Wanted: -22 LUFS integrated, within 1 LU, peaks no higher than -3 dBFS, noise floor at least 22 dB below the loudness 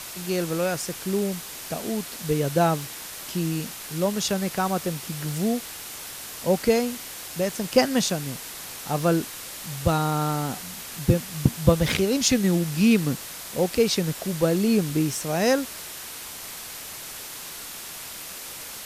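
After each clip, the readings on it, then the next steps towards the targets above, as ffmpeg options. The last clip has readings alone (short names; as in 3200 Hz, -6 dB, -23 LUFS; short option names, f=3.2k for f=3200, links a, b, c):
noise floor -38 dBFS; noise floor target -48 dBFS; loudness -25.5 LUFS; peak -4.5 dBFS; loudness target -22.0 LUFS
-> -af "afftdn=nr=10:nf=-38"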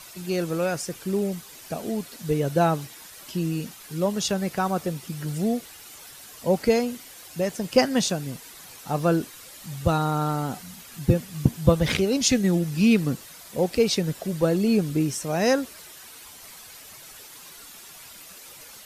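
noise floor -45 dBFS; noise floor target -47 dBFS
-> -af "afftdn=nr=6:nf=-45"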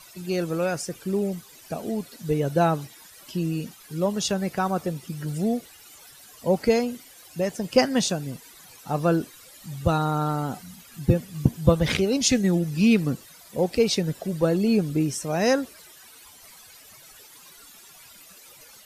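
noise floor -49 dBFS; loudness -25.0 LUFS; peak -5.0 dBFS; loudness target -22.0 LUFS
-> -af "volume=3dB,alimiter=limit=-3dB:level=0:latency=1"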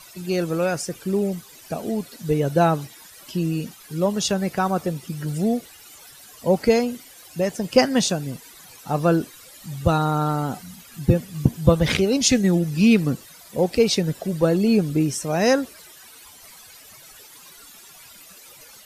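loudness -22.0 LUFS; peak -3.0 dBFS; noise floor -46 dBFS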